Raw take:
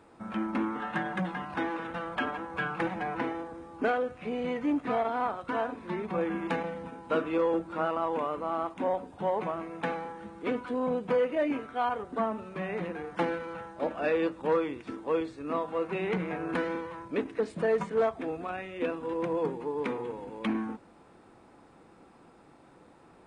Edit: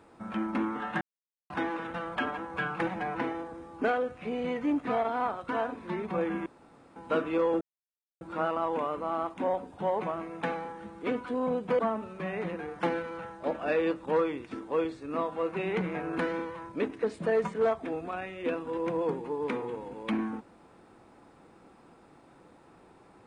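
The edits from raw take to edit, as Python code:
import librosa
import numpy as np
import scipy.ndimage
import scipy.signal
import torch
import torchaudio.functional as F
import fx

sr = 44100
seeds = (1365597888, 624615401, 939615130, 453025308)

y = fx.edit(x, sr, fx.silence(start_s=1.01, length_s=0.49),
    fx.room_tone_fill(start_s=6.46, length_s=0.5),
    fx.insert_silence(at_s=7.61, length_s=0.6),
    fx.cut(start_s=11.19, length_s=0.96), tone=tone)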